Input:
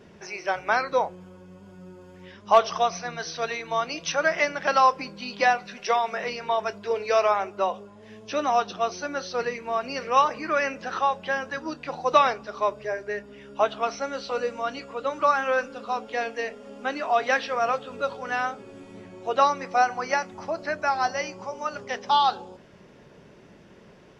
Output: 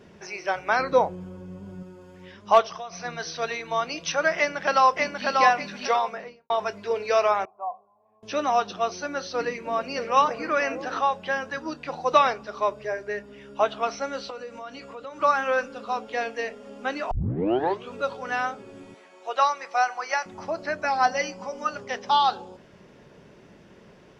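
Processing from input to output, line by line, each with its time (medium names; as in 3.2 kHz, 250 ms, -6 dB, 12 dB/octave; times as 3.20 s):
0.79–1.83 s: bass shelf 490 Hz +9 dB
2.61–3.04 s: compression 5:1, threshold -34 dBFS
4.37–5.28 s: echo throw 590 ms, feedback 25%, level -2.5 dB
5.93–6.50 s: studio fade out
7.45–8.23 s: cascade formant filter a
8.95–11.01 s: repeats whose band climbs or falls 312 ms, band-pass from 230 Hz, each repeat 0.7 oct, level -3 dB
14.30–15.21 s: compression 3:1, threshold -37 dBFS
17.11 s: tape start 0.82 s
18.94–20.26 s: high-pass 670 Hz
20.84–21.71 s: comb 4 ms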